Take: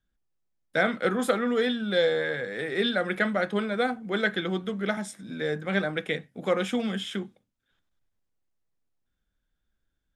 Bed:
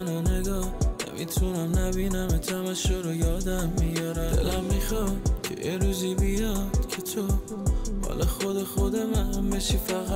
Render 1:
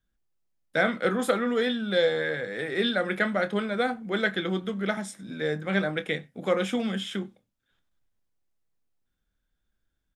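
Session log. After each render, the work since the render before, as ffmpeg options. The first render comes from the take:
-filter_complex "[0:a]asplit=2[s0][s1];[s1]adelay=26,volume=0.224[s2];[s0][s2]amix=inputs=2:normalize=0,asplit=2[s3][s4];[s4]adelay=93.29,volume=0.0316,highshelf=f=4000:g=-2.1[s5];[s3][s5]amix=inputs=2:normalize=0"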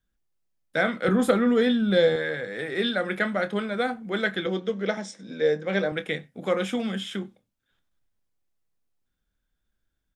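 -filter_complex "[0:a]asettb=1/sr,asplit=3[s0][s1][s2];[s0]atrim=end=1.084[s3];[s1]atrim=start=1.08:end=2.16,asetpts=PTS-STARTPTS,afade=t=in:d=0.004:c=qsin,afade=t=out:st=1.076:d=0.004:c=qsin,lowshelf=f=330:g=11[s4];[s2]atrim=start=2.156[s5];[s3][s4]acrossfade=d=0.004:c1=hsin:c2=qsin[s6];[s6][s5]acrossfade=d=0.004:c1=qsin:c2=hsin,asettb=1/sr,asplit=3[s7][s8][s9];[s7]atrim=end=4.464[s10];[s8]atrim=start=4.46:end=5.92,asetpts=PTS-STARTPTS,afade=t=in:d=0.004:c=qsin,afade=t=out:st=1.456:d=0.004:c=qsin,highpass=170,equalizer=f=490:t=q:w=4:g=10,equalizer=f=1300:t=q:w=4:g=-4,equalizer=f=5600:t=q:w=4:g=7,lowpass=f=7300:w=0.5412,lowpass=f=7300:w=1.3066[s11];[s9]atrim=start=5.916[s12];[s10][s11]acrossfade=d=0.004:c1=hsin:c2=qsin[s13];[s13][s12]acrossfade=d=0.004:c1=qsin:c2=hsin"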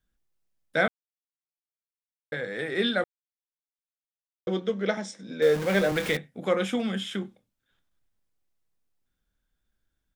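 -filter_complex "[0:a]asettb=1/sr,asplit=3[s0][s1][s2];[s0]atrim=end=5.424[s3];[s1]atrim=start=5.42:end=6.17,asetpts=PTS-STARTPTS,afade=t=in:d=0.004:c=qsin,afade=t=out:st=0.746:d=0.004:c=qsin,aeval=exprs='val(0)+0.5*0.0355*sgn(val(0))':c=same[s4];[s2]atrim=start=6.166[s5];[s3][s4]acrossfade=d=0.004:c1=hsin:c2=qsin[s6];[s6][s5]acrossfade=d=0.004:c1=qsin:c2=hsin,asplit=5[s7][s8][s9][s10][s11];[s7]atrim=end=0.88,asetpts=PTS-STARTPTS,afade=t=out:st=0.876:d=0.004:c=hsin[s12];[s8]atrim=start=0.88:end=2.32,asetpts=PTS-STARTPTS,volume=0[s13];[s9]atrim=start=2.32:end=3.04,asetpts=PTS-STARTPTS,afade=t=in:d=0.004:c=hsin,afade=t=out:st=0.716:d=0.004:c=hsin[s14];[s10]atrim=start=3.04:end=4.47,asetpts=PTS-STARTPTS,volume=0[s15];[s11]atrim=start=4.47,asetpts=PTS-STARTPTS,afade=t=in:d=0.004:c=hsin[s16];[s12][s13][s14][s15][s16]concat=n=5:v=0:a=1"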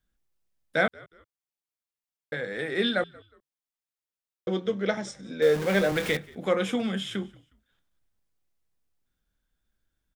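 -filter_complex "[0:a]asplit=3[s0][s1][s2];[s1]adelay=181,afreqshift=-69,volume=0.0631[s3];[s2]adelay=362,afreqshift=-138,volume=0.0202[s4];[s0][s3][s4]amix=inputs=3:normalize=0"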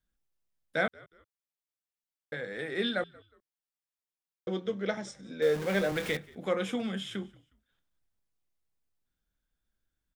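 -af "volume=0.562"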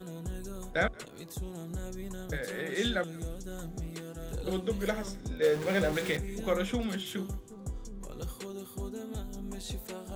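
-filter_complex "[1:a]volume=0.211[s0];[0:a][s0]amix=inputs=2:normalize=0"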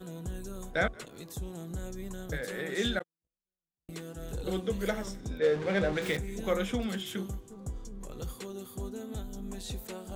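-filter_complex "[0:a]asettb=1/sr,asplit=3[s0][s1][s2];[s0]atrim=end=2.994[s3];[s1]atrim=start=2.99:end=3.89,asetpts=PTS-STARTPTS,afade=t=in:d=0.004:c=qsin,afade=t=out:st=0.896:d=0.004:c=qsin,agate=range=0.001:threshold=0.0355:ratio=16:release=100:detection=peak[s4];[s2]atrim=start=3.886[s5];[s3][s4]acrossfade=d=0.004:c1=hsin:c2=qsin[s6];[s6][s5]acrossfade=d=0.004:c1=qsin:c2=hsin,asettb=1/sr,asplit=3[s7][s8][s9];[s7]atrim=end=5.394[s10];[s8]atrim=start=5.39:end=6.02,asetpts=PTS-STARTPTS,afade=t=in:d=0.004:c=qsin,afade=t=out:st=0.626:d=0.004:c=qsin,adynamicsmooth=sensitivity=2:basefreq=4500[s11];[s9]atrim=start=6.016[s12];[s10][s11]acrossfade=d=0.004:c1=hsin:c2=qsin[s13];[s13][s12]acrossfade=d=0.004:c1=qsin:c2=hsin"

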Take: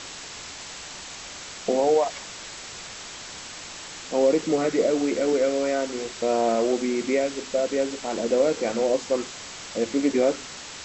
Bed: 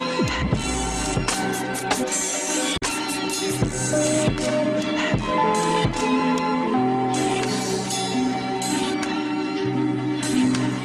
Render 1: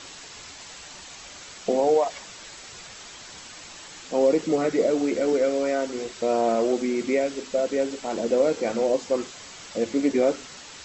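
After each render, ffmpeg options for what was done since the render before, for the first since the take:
-af "afftdn=nr=6:nf=-39"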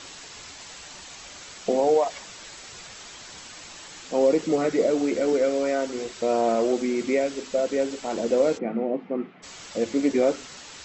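-filter_complex "[0:a]asplit=3[s0][s1][s2];[s0]afade=t=out:st=8.57:d=0.02[s3];[s1]highpass=f=150:w=0.5412,highpass=f=150:w=1.3066,equalizer=f=180:t=q:w=4:g=9,equalizer=f=250:t=q:w=4:g=3,equalizer=f=540:t=q:w=4:g=-9,equalizer=f=1000:t=q:w=4:g=-9,equalizer=f=1600:t=q:w=4:g=-9,lowpass=f=2000:w=0.5412,lowpass=f=2000:w=1.3066,afade=t=in:st=8.57:d=0.02,afade=t=out:st=9.42:d=0.02[s4];[s2]afade=t=in:st=9.42:d=0.02[s5];[s3][s4][s5]amix=inputs=3:normalize=0"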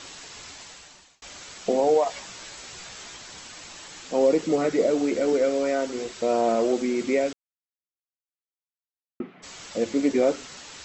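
-filter_complex "[0:a]asettb=1/sr,asplit=3[s0][s1][s2];[s0]atrim=end=2.054[s3];[s1]atrim=start=2.05:end=3.17,asetpts=PTS-STARTPTS,afade=t=in:d=0.004:c=qsin,afade=t=out:st=1.116:d=0.004:c=qsin,asplit=2[s4][s5];[s5]adelay=16,volume=0.562[s6];[s4][s6]amix=inputs=2:normalize=0,atrim=end_sample=49392[s7];[s2]atrim=start=3.166[s8];[s3][s7]acrossfade=d=0.004:c1=hsin:c2=qsin[s9];[s9][s8]acrossfade=d=0.004:c1=qsin:c2=hsin,asplit=4[s10][s11][s12][s13];[s10]atrim=end=1.22,asetpts=PTS-STARTPTS,afade=t=out:st=0.55:d=0.67[s14];[s11]atrim=start=1.22:end=7.33,asetpts=PTS-STARTPTS,afade=t=in:d=0.004:c=hsin,afade=t=out:st=6.106:d=0.004:c=hsin[s15];[s12]atrim=start=7.33:end=9.2,asetpts=PTS-STARTPTS,volume=0[s16];[s13]atrim=start=9.2,asetpts=PTS-STARTPTS,afade=t=in:d=0.004:c=hsin[s17];[s14][s15][s16][s17]concat=n=4:v=0:a=1"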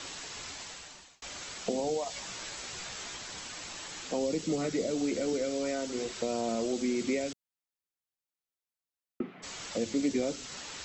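-filter_complex "[0:a]acrossover=split=220|3000[s0][s1][s2];[s1]acompressor=threshold=0.0251:ratio=6[s3];[s0][s3][s2]amix=inputs=3:normalize=0"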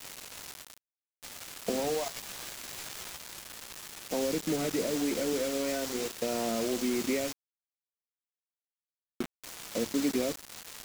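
-af "acrusher=bits=5:mix=0:aa=0.000001"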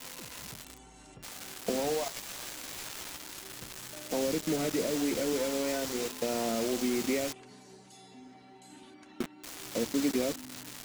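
-filter_complex "[1:a]volume=0.0355[s0];[0:a][s0]amix=inputs=2:normalize=0"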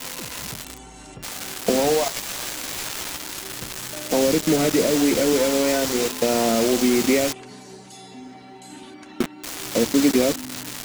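-af "volume=3.76"

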